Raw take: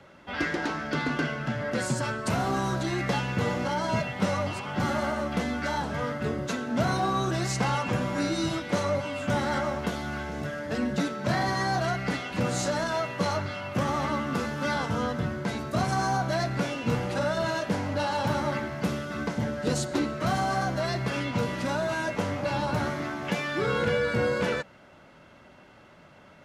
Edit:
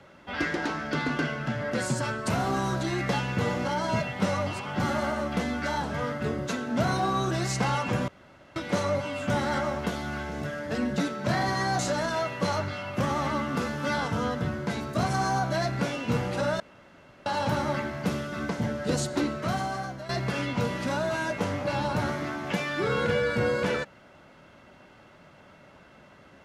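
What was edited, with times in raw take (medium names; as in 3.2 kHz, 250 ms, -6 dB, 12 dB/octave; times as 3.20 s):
8.08–8.56 s: room tone
11.79–12.57 s: delete
17.38–18.04 s: room tone
20.09–20.87 s: fade out, to -13.5 dB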